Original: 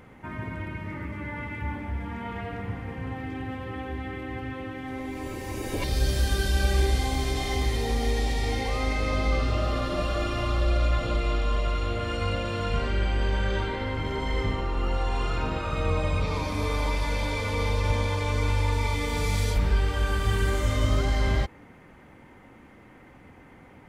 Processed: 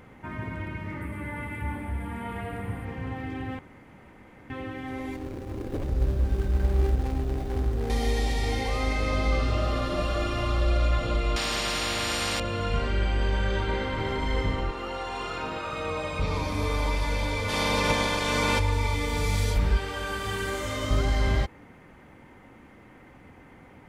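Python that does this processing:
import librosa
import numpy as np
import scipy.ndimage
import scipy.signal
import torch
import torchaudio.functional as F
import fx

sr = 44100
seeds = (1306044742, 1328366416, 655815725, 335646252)

y = fx.high_shelf_res(x, sr, hz=7500.0, db=8.5, q=3.0, at=(1.01, 2.85))
y = fx.median_filter(y, sr, points=41, at=(5.16, 7.9))
y = fx.spectral_comp(y, sr, ratio=4.0, at=(11.36, 12.4))
y = fx.echo_throw(y, sr, start_s=13.43, length_s=0.48, ms=250, feedback_pct=65, wet_db=-5.5)
y = fx.highpass(y, sr, hz=370.0, slope=6, at=(14.71, 16.19))
y = fx.spec_clip(y, sr, under_db=19, at=(17.48, 18.58), fade=0.02)
y = fx.highpass(y, sr, hz=270.0, slope=6, at=(19.77, 20.91))
y = fx.edit(y, sr, fx.room_tone_fill(start_s=3.59, length_s=0.91), tone=tone)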